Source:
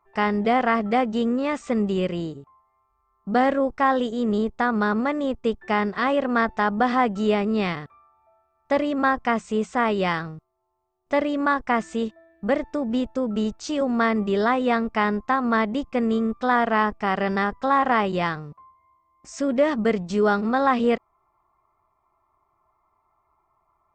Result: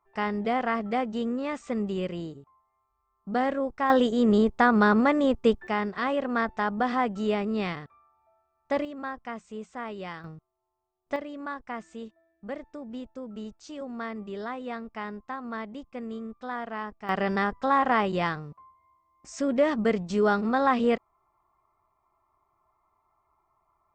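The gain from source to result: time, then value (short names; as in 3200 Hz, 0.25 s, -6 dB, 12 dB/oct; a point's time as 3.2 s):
-6.5 dB
from 3.9 s +2 dB
from 5.67 s -5.5 dB
from 8.85 s -14.5 dB
from 10.24 s -6.5 dB
from 11.16 s -14 dB
from 17.09 s -3 dB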